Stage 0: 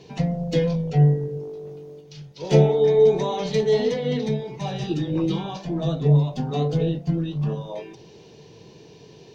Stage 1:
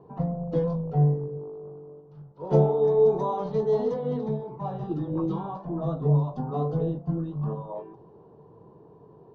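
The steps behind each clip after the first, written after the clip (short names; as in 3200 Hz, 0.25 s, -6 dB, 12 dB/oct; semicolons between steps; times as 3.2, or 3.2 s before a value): resonant high shelf 1600 Hz -12 dB, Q 3; low-pass opened by the level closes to 1500 Hz, open at -13 dBFS; gain -5 dB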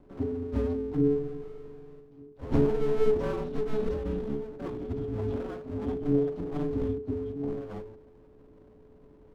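half-wave rectifier; frequency shift -430 Hz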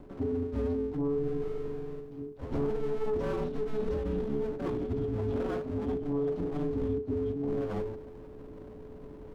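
sine folder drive 5 dB, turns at -11.5 dBFS; reverse; compressor, threshold -29 dBFS, peak gain reduction 14 dB; reverse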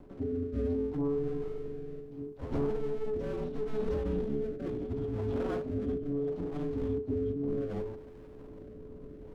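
rotary speaker horn 0.7 Hz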